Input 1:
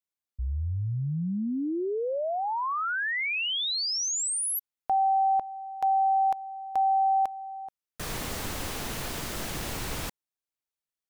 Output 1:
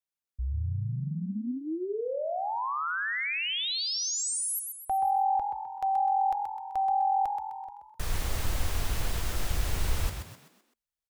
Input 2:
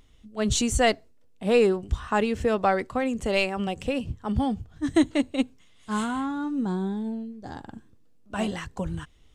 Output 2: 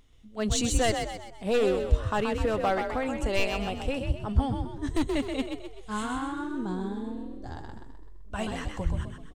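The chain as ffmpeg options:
ffmpeg -i in.wav -filter_complex "[0:a]volume=16.5dB,asoftclip=hard,volume=-16.5dB,asplit=6[link_01][link_02][link_03][link_04][link_05][link_06];[link_02]adelay=128,afreqshift=43,volume=-6dB[link_07];[link_03]adelay=256,afreqshift=86,volume=-13.1dB[link_08];[link_04]adelay=384,afreqshift=129,volume=-20.3dB[link_09];[link_05]adelay=512,afreqshift=172,volume=-27.4dB[link_10];[link_06]adelay=640,afreqshift=215,volume=-34.5dB[link_11];[link_01][link_07][link_08][link_09][link_10][link_11]amix=inputs=6:normalize=0,asubboost=boost=6:cutoff=81,volume=-3dB" out.wav

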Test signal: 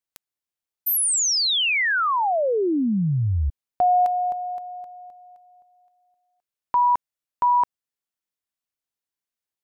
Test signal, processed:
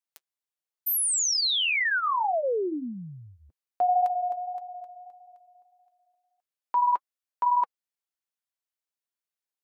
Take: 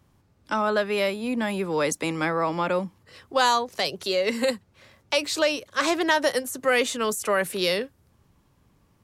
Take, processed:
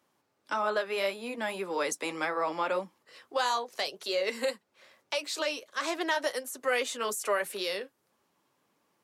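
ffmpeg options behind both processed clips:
ffmpeg -i in.wav -af "highpass=380,alimiter=limit=-15dB:level=0:latency=1:release=381,flanger=delay=2.9:depth=5.7:regen=-50:speed=1.7:shape=triangular" out.wav

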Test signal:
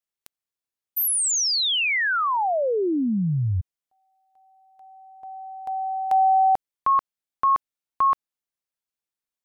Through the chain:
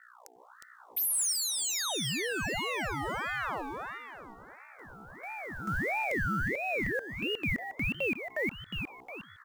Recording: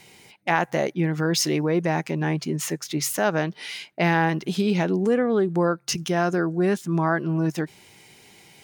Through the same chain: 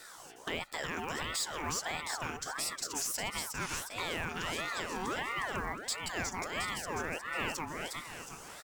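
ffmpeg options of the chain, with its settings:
ffmpeg -i in.wav -filter_complex "[0:a]highshelf=frequency=4900:width_type=q:width=3:gain=9.5,aeval=exprs='val(0)+0.00447*(sin(2*PI*60*n/s)+sin(2*PI*2*60*n/s)/2+sin(2*PI*3*60*n/s)/3+sin(2*PI*4*60*n/s)/4+sin(2*PI*5*60*n/s)/5)':channel_layout=same,highpass=frequency=110:width=0.5412,highpass=frequency=110:width=1.3066,acrossover=split=700[link_01][link_02];[link_01]acompressor=threshold=-32dB:ratio=5:attack=1:release=819:knee=1:detection=peak[link_03];[link_02]asoftclip=type=tanh:threshold=-9dB[link_04];[link_03][link_04]amix=inputs=2:normalize=0,bass=frequency=250:gain=1,treble=frequency=4000:gain=-8,acrusher=bits=6:mode=log:mix=0:aa=0.000001,asplit=6[link_05][link_06][link_07][link_08][link_09][link_10];[link_06]adelay=360,afreqshift=130,volume=-5dB[link_11];[link_07]adelay=720,afreqshift=260,volume=-12.7dB[link_12];[link_08]adelay=1080,afreqshift=390,volume=-20.5dB[link_13];[link_09]adelay=1440,afreqshift=520,volume=-28.2dB[link_14];[link_10]adelay=1800,afreqshift=650,volume=-36dB[link_15];[link_05][link_11][link_12][link_13][link_14][link_15]amix=inputs=6:normalize=0,alimiter=limit=-23dB:level=0:latency=1:release=337,aeval=exprs='val(0)*sin(2*PI*1100*n/s+1100*0.5/1.5*sin(2*PI*1.5*n/s))':channel_layout=same" out.wav

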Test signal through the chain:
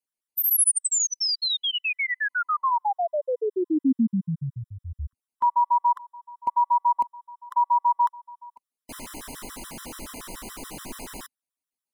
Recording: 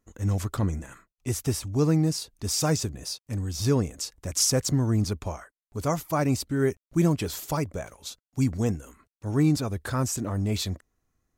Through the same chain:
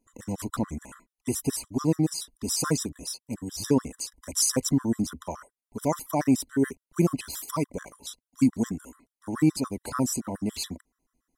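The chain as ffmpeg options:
ffmpeg -i in.wav -af "equalizer=frequency=100:width_type=o:width=0.67:gain=-12,equalizer=frequency=250:width_type=o:width=0.67:gain=8,equalizer=frequency=1000:width_type=o:width=0.67:gain=4,equalizer=frequency=10000:width_type=o:width=0.67:gain=8,afftfilt=real='re*gt(sin(2*PI*7*pts/sr)*(1-2*mod(floor(b*sr/1024/1000),2)),0)':imag='im*gt(sin(2*PI*7*pts/sr)*(1-2*mod(floor(b*sr/1024/1000),2)),0)':win_size=1024:overlap=0.75" out.wav

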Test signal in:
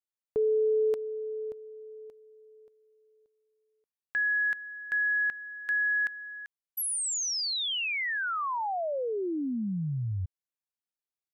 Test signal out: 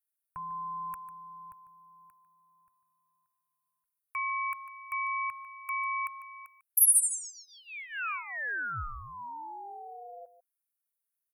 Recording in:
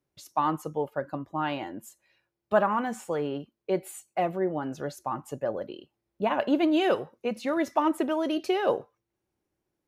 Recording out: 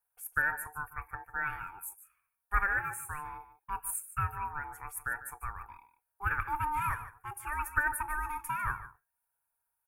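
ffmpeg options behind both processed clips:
ffmpeg -i in.wav -af "equalizer=frequency=2900:width_type=o:width=0.43:gain=-6,aecho=1:1:1:0.7,aeval=exprs='val(0)*sin(2*PI*600*n/s)':channel_layout=same,firequalizer=gain_entry='entry(110,0);entry(190,-26);entry(670,-16);entry(980,-1);entry(2300,-1);entry(3800,-30);entry(9600,12)':delay=0.05:min_phase=1,aecho=1:1:148:0.2" out.wav

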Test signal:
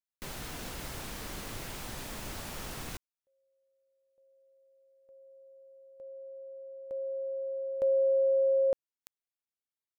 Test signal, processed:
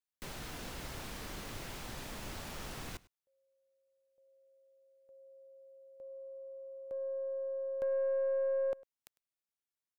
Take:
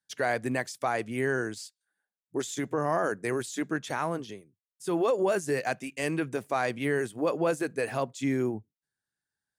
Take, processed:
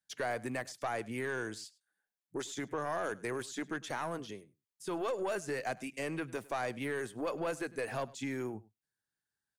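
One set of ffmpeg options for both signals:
ffmpeg -i in.wav -filter_complex "[0:a]acrossover=split=620|1500|6400[link_01][link_02][link_03][link_04];[link_01]acompressor=threshold=-34dB:ratio=4[link_05];[link_02]acompressor=threshold=-32dB:ratio=4[link_06];[link_03]acompressor=threshold=-39dB:ratio=4[link_07];[link_04]acompressor=threshold=-50dB:ratio=4[link_08];[link_05][link_06][link_07][link_08]amix=inputs=4:normalize=0,aeval=exprs='(tanh(15.8*val(0)+0.15)-tanh(0.15))/15.8':channel_layout=same,aecho=1:1:102:0.0794,volume=-2.5dB" out.wav

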